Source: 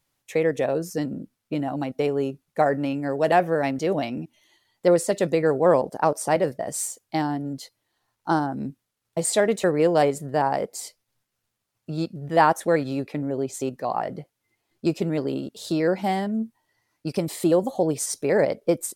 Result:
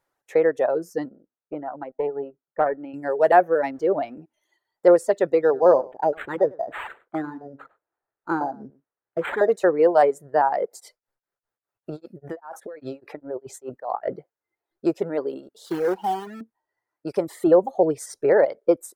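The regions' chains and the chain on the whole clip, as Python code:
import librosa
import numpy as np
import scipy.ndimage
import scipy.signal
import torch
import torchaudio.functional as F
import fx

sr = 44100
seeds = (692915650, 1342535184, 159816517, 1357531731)

y = fx.chain(x, sr, fx.highpass(hz=140.0, slope=6),
    fx.air_absorb(metres=490.0),
    fx.tube_stage(drive_db=13.0, bias=0.65), at=(1.09, 2.94))
y = fx.chain(y, sr, fx.zero_step(step_db=-42.0),
    fx.high_shelf(hz=4200.0, db=-10.5), at=(3.74, 4.14))
y = fx.chain(y, sr, fx.echo_single(ms=100, db=-12.5),
    fx.filter_lfo_notch(shape='saw_down', hz=1.0, low_hz=590.0, high_hz=4400.0, q=0.95),
    fx.resample_linear(factor=8), at=(5.41, 9.5))
y = fx.chain(y, sr, fx.over_compress(threshold_db=-31.0, ratio=-1.0),
    fx.tremolo_abs(hz=5.0), at=(10.71, 14.18))
y = fx.chain(y, sr, fx.peak_eq(hz=3000.0, db=13.5, octaves=0.31),
    fx.fixed_phaser(hz=400.0, stages=8),
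    fx.quant_companded(bits=4), at=(15.66, 16.41))
y = fx.chain(y, sr, fx.low_shelf(hz=180.0, db=9.5),
    fx.notch(hz=250.0, q=7.3), at=(17.47, 18.33))
y = fx.notch(y, sr, hz=1100.0, q=20.0)
y = fx.dereverb_blind(y, sr, rt60_s=1.8)
y = fx.band_shelf(y, sr, hz=780.0, db=13.5, octaves=2.8)
y = y * librosa.db_to_amplitude(-9.0)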